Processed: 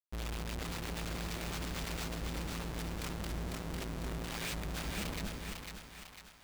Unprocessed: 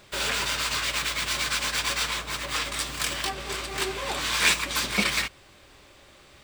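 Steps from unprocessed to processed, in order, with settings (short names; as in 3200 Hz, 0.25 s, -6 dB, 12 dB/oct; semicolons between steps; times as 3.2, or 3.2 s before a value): passive tone stack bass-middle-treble 10-0-1; Schmitt trigger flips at -47.5 dBFS; split-band echo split 730 Hz, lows 0.253 s, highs 0.5 s, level -3.5 dB; gain +10.5 dB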